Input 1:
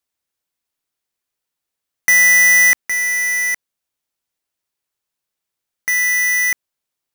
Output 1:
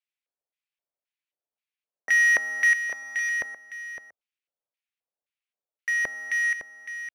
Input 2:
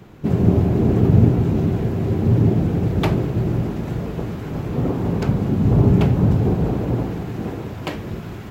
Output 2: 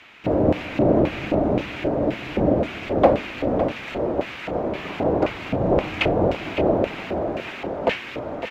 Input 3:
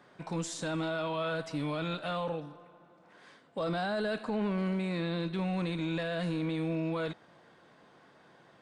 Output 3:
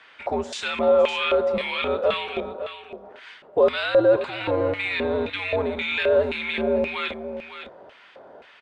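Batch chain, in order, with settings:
frequency shift -93 Hz; LFO band-pass square 1.9 Hz 580–2500 Hz; delay 559 ms -10.5 dB; normalise loudness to -23 LUFS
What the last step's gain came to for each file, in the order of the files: -2.5 dB, +15.0 dB, +20.5 dB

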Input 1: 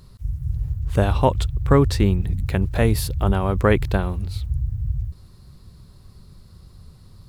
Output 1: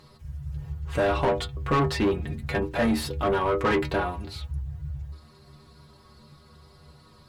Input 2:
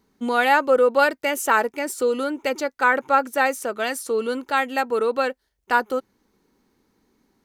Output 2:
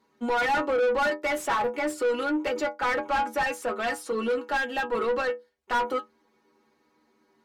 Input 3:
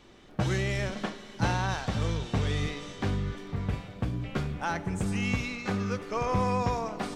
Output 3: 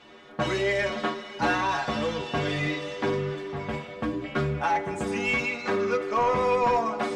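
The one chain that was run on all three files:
dynamic bell 280 Hz, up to +5 dB, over -39 dBFS, Q 2.3; inharmonic resonator 72 Hz, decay 0.31 s, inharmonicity 0.008; overdrive pedal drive 28 dB, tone 1.8 kHz, clips at -8.5 dBFS; normalise loudness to -27 LUFS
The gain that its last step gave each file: -5.0 dB, -7.5 dB, -2.0 dB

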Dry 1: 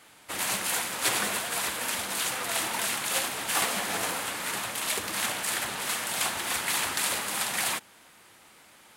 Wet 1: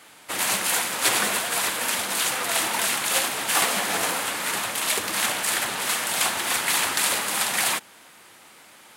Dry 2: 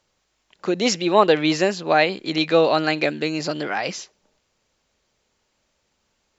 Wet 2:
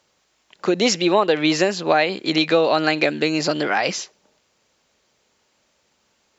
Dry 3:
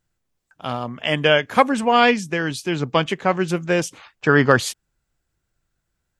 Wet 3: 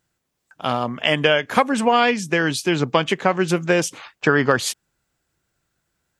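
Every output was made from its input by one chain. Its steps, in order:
high-pass 150 Hz 6 dB/octave; compression 4:1, threshold -19 dBFS; trim +5.5 dB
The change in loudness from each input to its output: +5.5 LU, +1.0 LU, -0.5 LU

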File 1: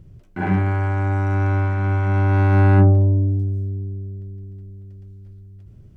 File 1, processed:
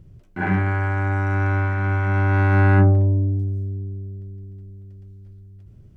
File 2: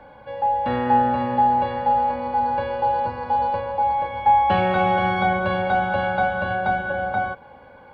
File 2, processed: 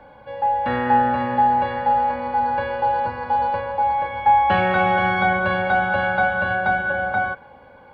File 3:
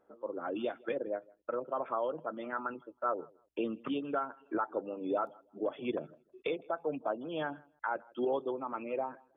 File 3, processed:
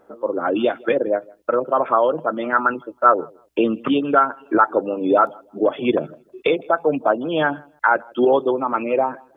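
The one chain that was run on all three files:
dynamic bell 1.7 kHz, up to +7 dB, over -41 dBFS, Q 1.4; normalise loudness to -20 LUFS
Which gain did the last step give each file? -2.0 dB, -0.5 dB, +16.0 dB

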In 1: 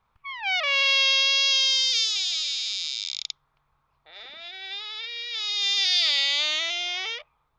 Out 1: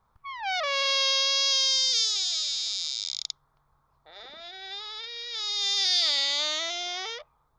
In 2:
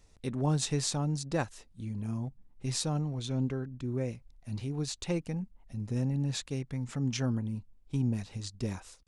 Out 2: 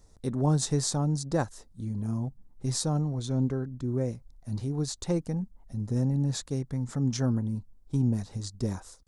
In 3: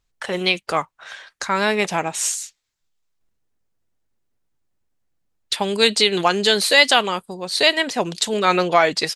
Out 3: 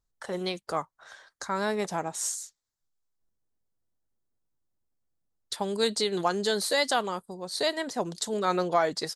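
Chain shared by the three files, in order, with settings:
peaking EQ 2.6 kHz -14 dB 0.85 oct; peak normalisation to -12 dBFS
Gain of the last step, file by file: +3.0 dB, +4.0 dB, -7.5 dB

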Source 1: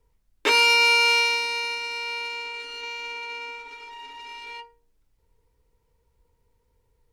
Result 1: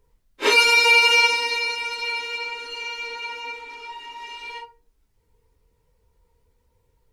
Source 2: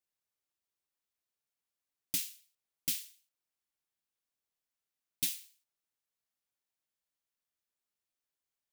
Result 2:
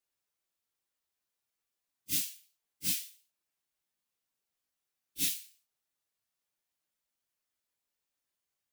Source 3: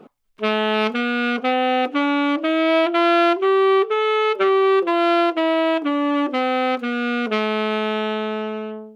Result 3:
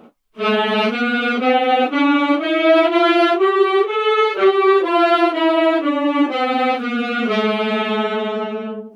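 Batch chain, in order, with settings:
phase randomisation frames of 100 ms; trim +3 dB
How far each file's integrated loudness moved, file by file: +2.5 LU, +3.0 LU, +3.0 LU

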